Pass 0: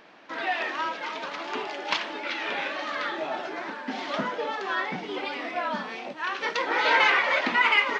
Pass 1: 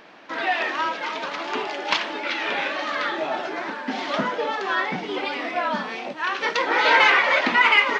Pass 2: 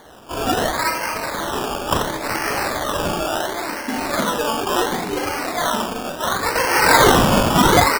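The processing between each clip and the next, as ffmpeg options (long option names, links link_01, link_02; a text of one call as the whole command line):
ffmpeg -i in.wav -af "acontrast=21" out.wav
ffmpeg -i in.wav -af "aecho=1:1:40|88|145.6|214.7|297.7:0.631|0.398|0.251|0.158|0.1,acrusher=samples=17:mix=1:aa=0.000001:lfo=1:lforange=10.2:lforate=0.71,volume=2dB" out.wav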